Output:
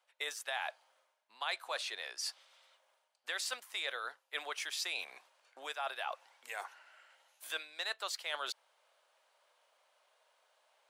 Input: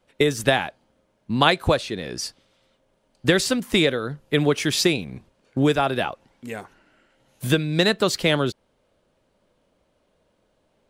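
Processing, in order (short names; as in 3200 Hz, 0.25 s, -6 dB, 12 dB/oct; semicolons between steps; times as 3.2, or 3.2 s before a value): HPF 740 Hz 24 dB/oct; reverse; compressor 4:1, threshold -40 dBFS, peak gain reduction 21.5 dB; reverse; gain +1 dB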